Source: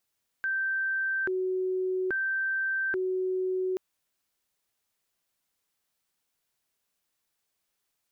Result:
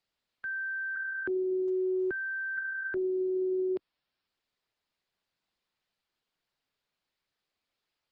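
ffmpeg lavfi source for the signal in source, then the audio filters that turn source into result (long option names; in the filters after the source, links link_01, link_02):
-f lavfi -i "aevalsrc='0.0501*sin(2*PI*(966*t+594/0.6*(0.5-abs(mod(0.6*t,1)-0.5))))':duration=3.33:sample_rate=44100"
-filter_complex "[0:a]acrossover=split=140|390[link_01][link_02][link_03];[link_03]alimiter=level_in=7.5dB:limit=-24dB:level=0:latency=1:release=50,volume=-7.5dB[link_04];[link_01][link_02][link_04]amix=inputs=3:normalize=0,aresample=11025,aresample=44100" -ar 48000 -c:a libopus -b:a 16k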